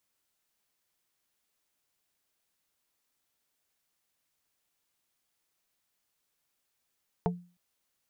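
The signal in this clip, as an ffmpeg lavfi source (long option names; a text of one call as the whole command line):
ffmpeg -f lavfi -i "aevalsrc='0.0631*pow(10,-3*t/0.37)*sin(2*PI*176*t)+0.0562*pow(10,-3*t/0.123)*sin(2*PI*440*t)+0.0501*pow(10,-3*t/0.07)*sin(2*PI*704*t)+0.0447*pow(10,-3*t/0.054)*sin(2*PI*880*t)':duration=0.31:sample_rate=44100" out.wav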